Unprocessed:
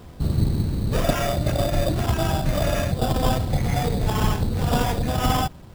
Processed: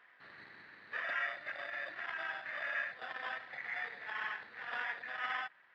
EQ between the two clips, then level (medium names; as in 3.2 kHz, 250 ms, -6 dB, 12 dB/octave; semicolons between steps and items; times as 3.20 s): resonant high-pass 1.8 kHz, resonance Q 5.8; distance through air 64 m; tape spacing loss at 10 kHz 45 dB; -4.0 dB